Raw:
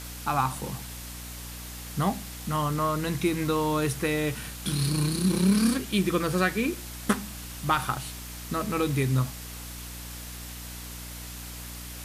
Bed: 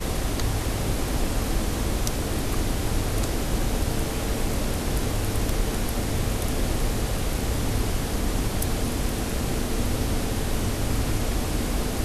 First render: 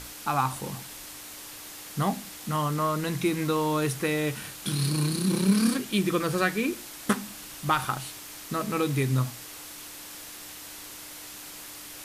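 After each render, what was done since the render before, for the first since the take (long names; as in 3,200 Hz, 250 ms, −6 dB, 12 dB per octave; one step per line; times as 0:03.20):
mains-hum notches 60/120/180/240 Hz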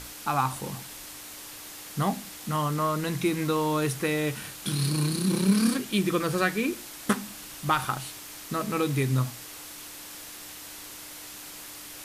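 no processing that can be heard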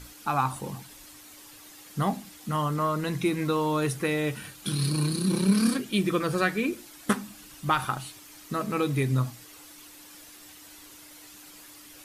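broadband denoise 9 dB, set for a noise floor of −43 dBFS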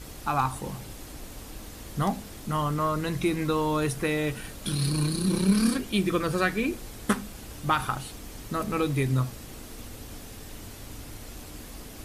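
mix in bed −17.5 dB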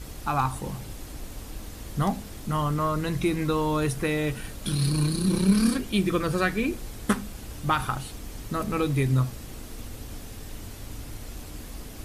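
low-shelf EQ 130 Hz +5.5 dB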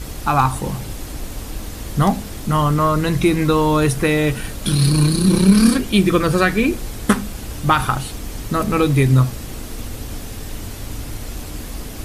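level +9.5 dB
brickwall limiter −2 dBFS, peak gain reduction 2 dB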